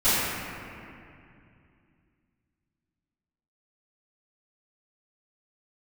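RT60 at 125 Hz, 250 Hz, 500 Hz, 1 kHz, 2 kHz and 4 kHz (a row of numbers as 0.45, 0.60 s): 3.5, 3.3, 2.6, 2.4, 2.5, 1.7 s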